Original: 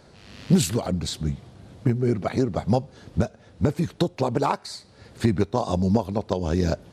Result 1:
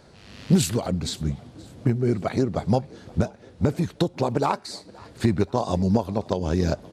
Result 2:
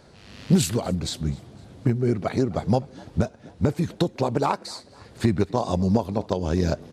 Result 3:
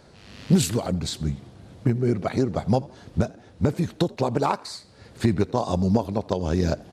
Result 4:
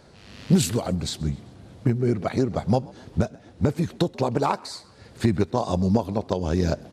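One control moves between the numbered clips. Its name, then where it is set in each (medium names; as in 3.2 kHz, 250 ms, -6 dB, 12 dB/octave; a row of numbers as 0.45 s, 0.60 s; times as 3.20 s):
frequency-shifting echo, time: 525 ms, 253 ms, 84 ms, 131 ms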